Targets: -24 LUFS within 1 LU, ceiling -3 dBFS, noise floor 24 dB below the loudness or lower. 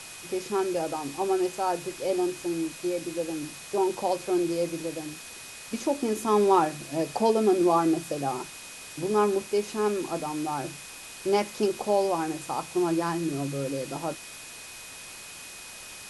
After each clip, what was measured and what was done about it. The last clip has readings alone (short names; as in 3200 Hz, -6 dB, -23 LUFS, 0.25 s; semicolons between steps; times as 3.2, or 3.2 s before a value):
steady tone 2500 Hz; tone level -48 dBFS; noise floor -43 dBFS; noise floor target -52 dBFS; loudness -27.5 LUFS; peak -10.5 dBFS; loudness target -24.0 LUFS
-> notch 2500 Hz, Q 30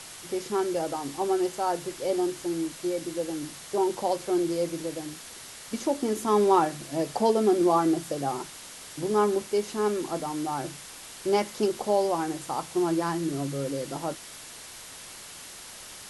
steady tone none; noise floor -44 dBFS; noise floor target -52 dBFS
-> denoiser 8 dB, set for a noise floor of -44 dBFS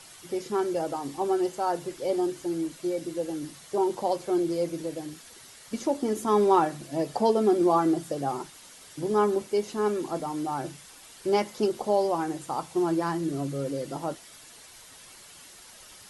noise floor -50 dBFS; noise floor target -52 dBFS
-> denoiser 6 dB, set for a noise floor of -50 dBFS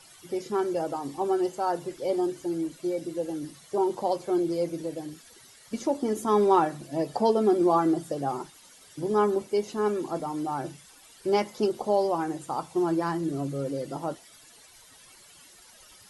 noise floor -54 dBFS; loudness -28.0 LUFS; peak -10.5 dBFS; loudness target -24.0 LUFS
-> gain +4 dB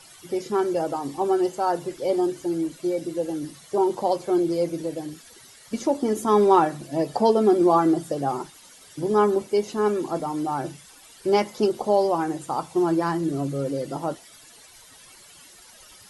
loudness -24.0 LUFS; peak -6.5 dBFS; noise floor -50 dBFS